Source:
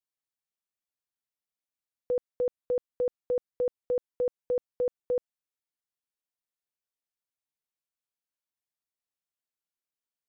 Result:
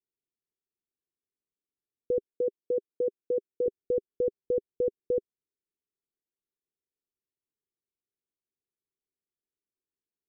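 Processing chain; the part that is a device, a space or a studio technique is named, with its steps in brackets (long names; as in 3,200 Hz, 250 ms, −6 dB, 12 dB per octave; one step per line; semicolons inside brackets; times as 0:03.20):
0:02.26–0:03.66: Bessel high-pass filter 260 Hz, order 2
under water (low-pass filter 420 Hz 24 dB per octave; parametric band 400 Hz +10.5 dB 0.6 octaves)
level +2 dB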